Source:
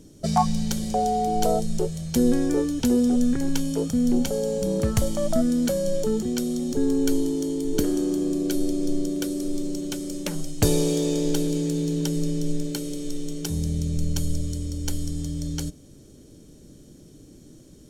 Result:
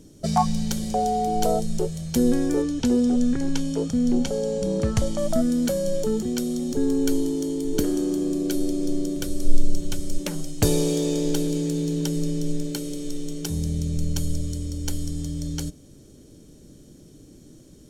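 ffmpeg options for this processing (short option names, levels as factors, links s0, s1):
-filter_complex "[0:a]asettb=1/sr,asplit=3[s0][s1][s2];[s0]atrim=end=2.624[s3];[s1]atrim=start=2.62:end=5.18,asetpts=PTS-STARTPTS,afade=t=in:d=0.004:c=qsin,afade=t=out:st=2.556:d=0.004:c=qsin,lowpass=7700[s4];[s2]atrim=start=5.176[s5];[s3][s4]acrossfade=d=0.004:c1=hsin:c2=qsin[s6];[s6][s5]acrossfade=d=0.004:c1=qsin:c2=hsin,asplit=3[s7][s8][s9];[s7]afade=t=out:st=9.16:d=0.02[s10];[s8]asubboost=boost=8.5:cutoff=91,afade=t=in:st=9.16:d=0.02,afade=t=out:st=10.18:d=0.02[s11];[s9]afade=t=in:st=10.18:d=0.02[s12];[s10][s11][s12]amix=inputs=3:normalize=0"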